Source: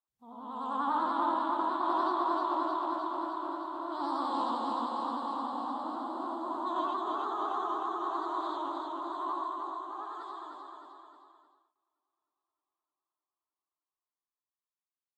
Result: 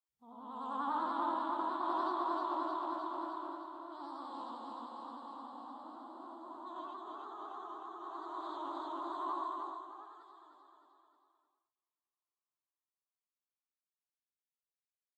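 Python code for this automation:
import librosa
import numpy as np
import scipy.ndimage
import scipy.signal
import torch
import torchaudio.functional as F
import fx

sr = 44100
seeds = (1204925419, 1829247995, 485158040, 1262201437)

y = fx.gain(x, sr, db=fx.line((3.35, -5.5), (4.12, -13.0), (7.95, -13.0), (8.92, -3.5), (9.6, -3.5), (10.26, -15.5)))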